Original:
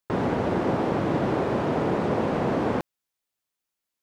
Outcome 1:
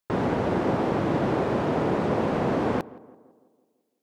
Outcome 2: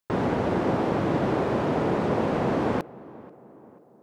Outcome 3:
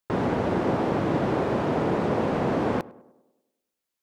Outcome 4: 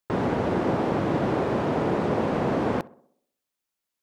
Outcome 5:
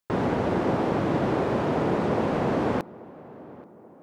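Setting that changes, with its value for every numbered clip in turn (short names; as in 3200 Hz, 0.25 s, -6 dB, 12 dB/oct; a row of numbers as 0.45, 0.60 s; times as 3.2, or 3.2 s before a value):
tape echo, time: 168, 488, 100, 62, 832 ms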